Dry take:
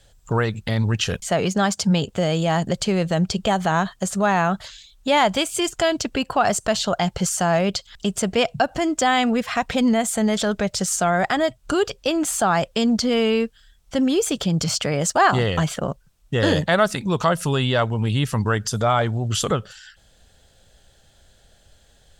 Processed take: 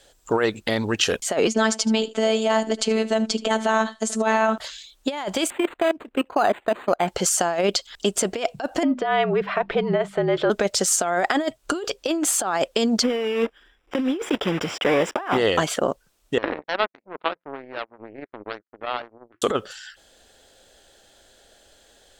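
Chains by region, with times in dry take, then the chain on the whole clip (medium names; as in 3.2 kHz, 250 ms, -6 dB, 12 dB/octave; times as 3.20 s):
1.47–4.58 s: low-pass 9.8 kHz 24 dB/octave + delay 76 ms -17.5 dB + robot voice 220 Hz
5.50–7.08 s: level held to a coarse grid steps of 21 dB + decimation joined by straight lines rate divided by 8×
8.83–10.50 s: distance through air 410 m + hum notches 50/100/150/200/250/300/350/400 Hz + frequency shift -53 Hz
13.03–15.38 s: block-companded coder 3-bit + Savitzky-Golay filter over 25 samples + band-stop 640 Hz, Q 14
16.38–19.42 s: steep low-pass 2.3 kHz 96 dB/octave + de-hum 58.44 Hz, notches 3 + power-law waveshaper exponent 3
whole clip: resonant low shelf 210 Hz -12.5 dB, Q 1.5; compressor with a negative ratio -21 dBFS, ratio -0.5; trim +1.5 dB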